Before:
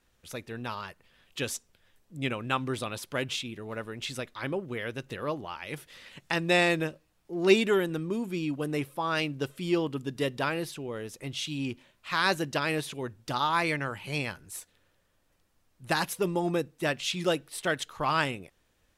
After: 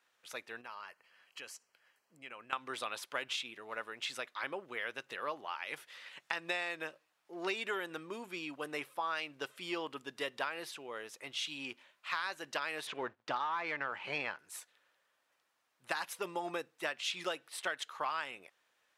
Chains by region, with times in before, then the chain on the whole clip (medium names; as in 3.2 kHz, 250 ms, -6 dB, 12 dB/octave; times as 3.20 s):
0.61–2.53 s: Butterworth band-stop 3.6 kHz, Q 5.5 + compression 3:1, threshold -43 dBFS
12.87–14.39 s: waveshaping leveller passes 2 + tape spacing loss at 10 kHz 23 dB
whole clip: high-pass 1.1 kHz 12 dB/octave; tilt EQ -3 dB/octave; compression 16:1, threshold -35 dBFS; trim +3 dB